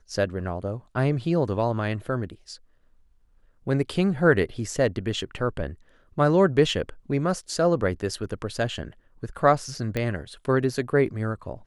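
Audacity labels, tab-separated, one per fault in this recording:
9.970000	9.970000	pop -14 dBFS

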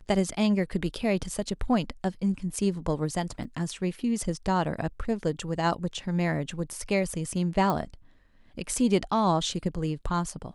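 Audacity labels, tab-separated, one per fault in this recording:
3.440000	3.450000	dropout 5.9 ms
7.700000	7.700000	pop -15 dBFS

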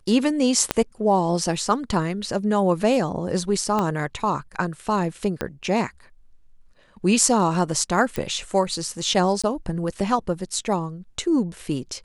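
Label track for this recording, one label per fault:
0.710000	0.710000	pop -4 dBFS
3.790000	3.790000	pop -11 dBFS
5.410000	5.410000	pop -11 dBFS
8.160000	8.160000	pop
9.420000	9.440000	dropout 16 ms

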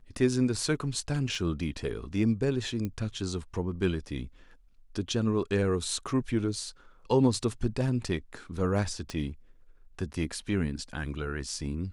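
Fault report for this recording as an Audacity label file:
1.350000	1.350000	dropout 3.2 ms
2.850000	2.850000	pop -21 dBFS
9.100000	9.100000	pop -22 dBFS

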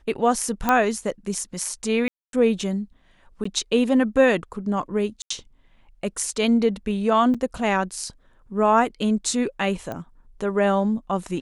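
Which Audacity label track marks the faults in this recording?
0.690000	0.690000	pop -6 dBFS
2.080000	2.330000	dropout 252 ms
3.440000	3.450000	dropout 14 ms
5.220000	5.300000	dropout 84 ms
7.340000	7.350000	dropout 5.4 ms
9.920000	9.920000	pop -19 dBFS

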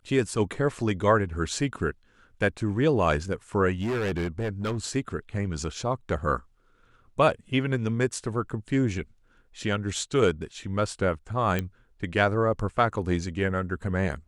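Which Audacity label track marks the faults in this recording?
3.810000	4.780000	clipped -24.5 dBFS
11.590000	11.590000	pop -14 dBFS

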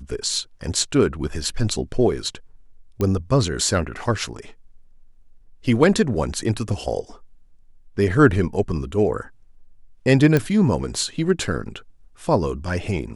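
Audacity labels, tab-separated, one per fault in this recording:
3.010000	3.010000	pop -11 dBFS
10.370000	10.370000	pop -7 dBFS

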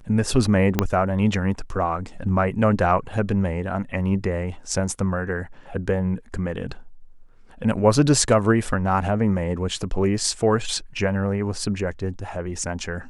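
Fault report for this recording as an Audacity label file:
0.790000	0.790000	pop -4 dBFS

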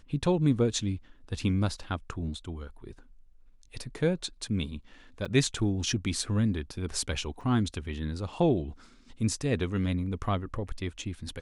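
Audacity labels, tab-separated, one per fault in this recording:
5.250000	5.260000	dropout 6 ms
7.410000	7.410000	dropout 3.3 ms

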